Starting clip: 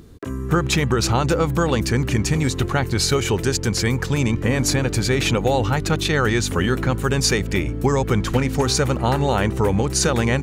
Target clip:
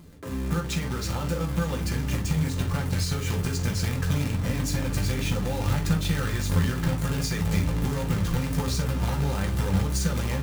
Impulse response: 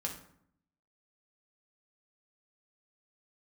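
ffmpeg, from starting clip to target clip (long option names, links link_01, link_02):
-filter_complex "[0:a]acompressor=threshold=-22dB:ratio=10,asubboost=boost=3.5:cutoff=170,acrusher=bits=2:mode=log:mix=0:aa=0.000001[link_01];[1:a]atrim=start_sample=2205,atrim=end_sample=3087[link_02];[link_01][link_02]afir=irnorm=-1:irlink=0,volume=-6dB"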